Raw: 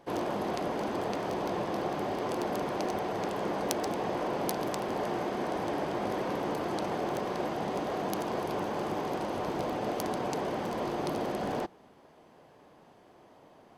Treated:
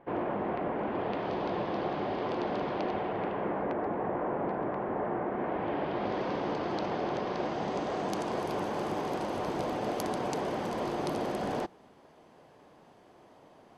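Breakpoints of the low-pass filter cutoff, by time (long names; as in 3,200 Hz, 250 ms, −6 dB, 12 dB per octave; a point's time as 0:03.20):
low-pass filter 24 dB per octave
0:00.80 2,400 Hz
0:01.33 4,200 Hz
0:02.69 4,200 Hz
0:03.77 1,900 Hz
0:05.28 1,900 Hz
0:06.23 5,200 Hz
0:07.26 5,200 Hz
0:08.54 12,000 Hz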